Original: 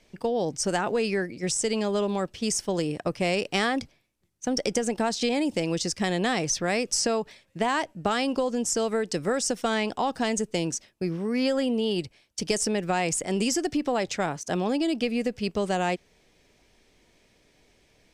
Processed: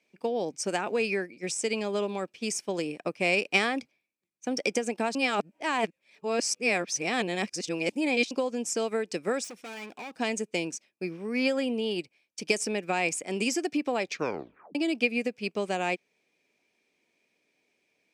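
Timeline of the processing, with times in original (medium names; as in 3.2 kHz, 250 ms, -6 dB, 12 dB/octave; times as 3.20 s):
5.15–8.31 s: reverse
9.44–10.18 s: overload inside the chain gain 32 dB
14.05 s: tape stop 0.70 s
whole clip: Chebyshev high-pass 250 Hz, order 2; peaking EQ 2.4 kHz +12.5 dB 0.21 oct; upward expansion 1.5:1, over -45 dBFS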